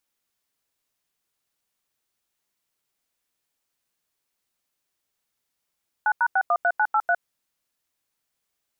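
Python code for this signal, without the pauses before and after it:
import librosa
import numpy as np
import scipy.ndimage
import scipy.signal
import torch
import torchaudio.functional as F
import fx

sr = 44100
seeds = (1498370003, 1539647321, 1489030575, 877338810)

y = fx.dtmf(sr, digits='9#613983', tone_ms=59, gap_ms=88, level_db=-20.0)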